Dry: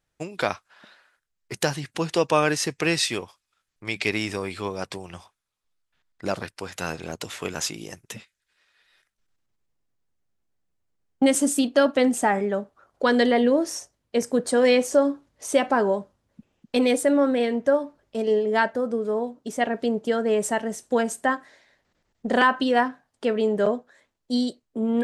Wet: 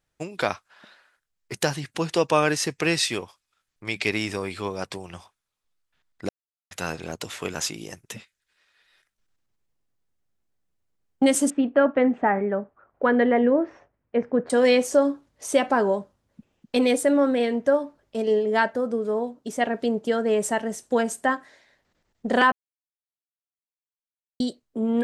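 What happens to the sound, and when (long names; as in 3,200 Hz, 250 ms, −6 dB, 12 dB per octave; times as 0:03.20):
0:06.29–0:06.71: silence
0:11.50–0:14.50: low-pass filter 2,200 Hz 24 dB per octave
0:22.52–0:24.40: silence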